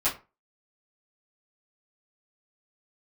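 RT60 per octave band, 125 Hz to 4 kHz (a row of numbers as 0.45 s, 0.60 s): 0.30 s, 0.30 s, 0.30 s, 0.30 s, 0.25 s, 0.20 s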